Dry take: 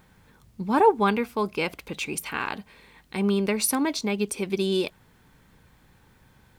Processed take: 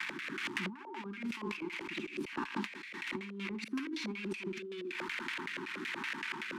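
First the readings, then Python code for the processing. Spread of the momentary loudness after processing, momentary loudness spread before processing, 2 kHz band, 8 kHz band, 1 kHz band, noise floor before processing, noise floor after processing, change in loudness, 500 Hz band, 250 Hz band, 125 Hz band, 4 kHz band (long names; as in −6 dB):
4 LU, 13 LU, −4.0 dB, −21.5 dB, −17.0 dB, −59 dBFS, −48 dBFS, −13.5 dB, −18.0 dB, −12.0 dB, −14.5 dB, −8.5 dB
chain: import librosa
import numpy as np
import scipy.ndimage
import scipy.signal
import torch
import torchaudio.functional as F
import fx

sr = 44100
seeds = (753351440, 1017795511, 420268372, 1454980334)

y = x + 0.5 * 10.0 ** (-13.5 / 20.0) * np.diff(np.sign(x), prepend=np.sign(x[:1]))
y = scipy.signal.sosfilt(scipy.signal.cheby1(4, 1.0, [370.0, 890.0], 'bandstop', fs=sr, output='sos'), y)
y = fx.echo_feedback(y, sr, ms=60, feedback_pct=29, wet_db=-5.0)
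y = fx.auto_swell(y, sr, attack_ms=646.0)
y = fx.filter_lfo_lowpass(y, sr, shape='square', hz=5.3, low_hz=530.0, high_hz=2300.0, q=2.7)
y = scipy.signal.sosfilt(scipy.signal.butter(4, 200.0, 'highpass', fs=sr, output='sos'), y)
y = fx.low_shelf(y, sr, hz=270.0, db=-7.0)
y = fx.over_compress(y, sr, threshold_db=-41.0, ratio=-1.0)
y = fx.rotary(y, sr, hz=1.1)
y = fx.band_squash(y, sr, depth_pct=70)
y = y * 10.0 ** (1.0 / 20.0)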